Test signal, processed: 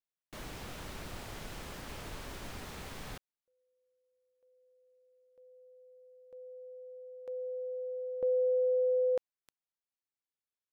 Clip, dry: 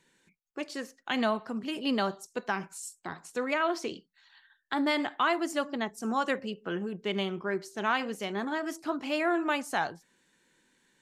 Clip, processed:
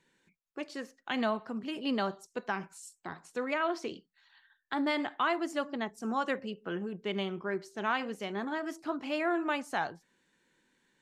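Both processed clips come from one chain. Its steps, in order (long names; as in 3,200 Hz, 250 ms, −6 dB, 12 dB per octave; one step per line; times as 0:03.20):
high-shelf EQ 6,000 Hz −8 dB
level −2.5 dB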